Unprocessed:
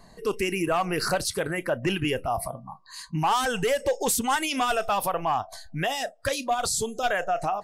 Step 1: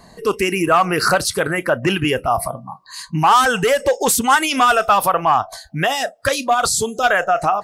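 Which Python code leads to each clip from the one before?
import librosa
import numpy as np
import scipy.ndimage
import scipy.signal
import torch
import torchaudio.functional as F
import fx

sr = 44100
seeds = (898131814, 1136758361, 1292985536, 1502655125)

y = fx.highpass(x, sr, hz=56.0, slope=6)
y = fx.dynamic_eq(y, sr, hz=1300.0, q=2.3, threshold_db=-42.0, ratio=4.0, max_db=7)
y = y * librosa.db_to_amplitude(8.0)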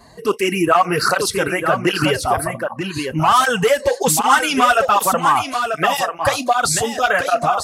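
y = x + 10.0 ** (-7.0 / 20.0) * np.pad(x, (int(939 * sr / 1000.0), 0))[:len(x)]
y = fx.flanger_cancel(y, sr, hz=1.3, depth_ms=6.6)
y = y * librosa.db_to_amplitude(2.5)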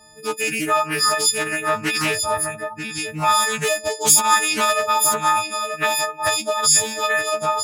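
y = fx.freq_snap(x, sr, grid_st=6)
y = fx.doppler_dist(y, sr, depth_ms=0.21)
y = y * librosa.db_to_amplitude(-8.5)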